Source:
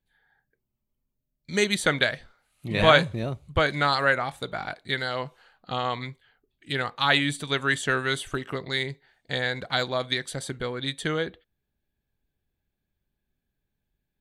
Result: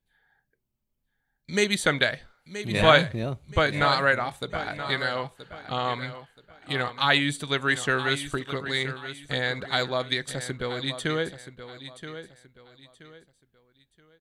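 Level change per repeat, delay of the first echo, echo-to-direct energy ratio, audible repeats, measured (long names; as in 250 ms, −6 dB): −10.5 dB, 976 ms, −11.5 dB, 3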